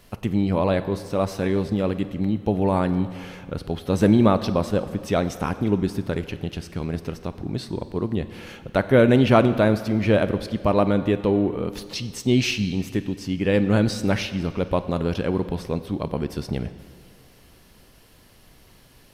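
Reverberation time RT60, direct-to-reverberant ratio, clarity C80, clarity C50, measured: 2.1 s, 12.0 dB, 13.5 dB, 13.0 dB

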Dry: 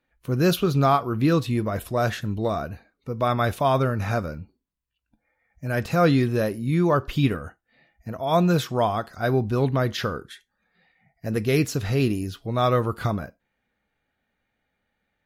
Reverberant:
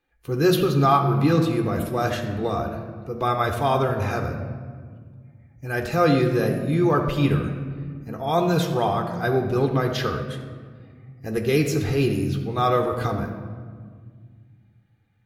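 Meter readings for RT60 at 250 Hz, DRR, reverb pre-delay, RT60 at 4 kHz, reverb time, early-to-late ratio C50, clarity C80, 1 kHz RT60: 2.8 s, 4.5 dB, 3 ms, 1.0 s, 1.8 s, 7.0 dB, 8.0 dB, 1.7 s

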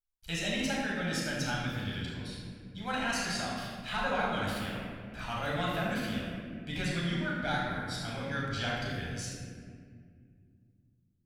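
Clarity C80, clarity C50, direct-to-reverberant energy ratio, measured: 0.5 dB, −1.5 dB, −5.5 dB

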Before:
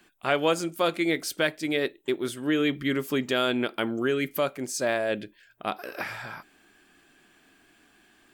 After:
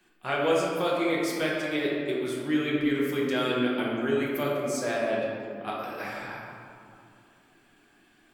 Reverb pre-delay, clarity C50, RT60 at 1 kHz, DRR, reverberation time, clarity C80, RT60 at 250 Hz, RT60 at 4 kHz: 6 ms, −1.0 dB, 2.4 s, −5.5 dB, 2.4 s, 1.0 dB, 2.8 s, 1.2 s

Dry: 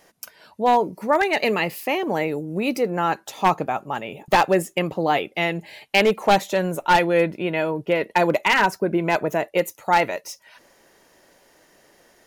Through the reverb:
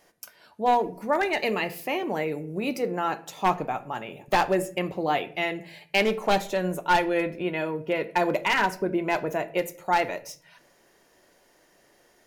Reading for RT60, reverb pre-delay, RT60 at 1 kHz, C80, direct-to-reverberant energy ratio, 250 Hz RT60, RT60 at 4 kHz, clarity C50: 0.50 s, 3 ms, 0.45 s, 20.0 dB, 9.0 dB, 0.90 s, 0.35 s, 17.0 dB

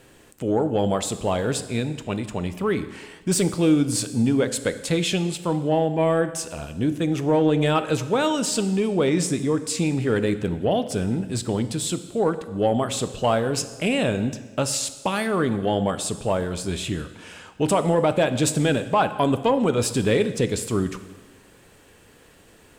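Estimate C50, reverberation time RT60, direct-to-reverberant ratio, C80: 12.5 dB, 1.3 s, 10.5 dB, 14.0 dB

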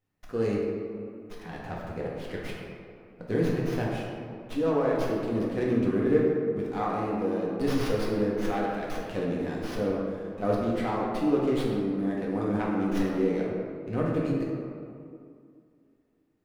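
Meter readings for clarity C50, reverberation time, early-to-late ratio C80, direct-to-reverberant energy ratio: −0.5 dB, 2.4 s, 1.5 dB, −4.5 dB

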